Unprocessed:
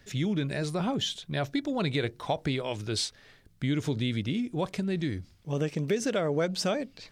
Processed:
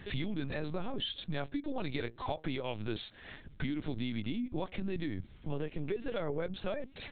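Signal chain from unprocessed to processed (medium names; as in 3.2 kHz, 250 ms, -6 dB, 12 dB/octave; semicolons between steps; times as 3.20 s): compression 5:1, threshold -43 dBFS, peak gain reduction 18 dB; LPC vocoder at 8 kHz pitch kept; trim +8.5 dB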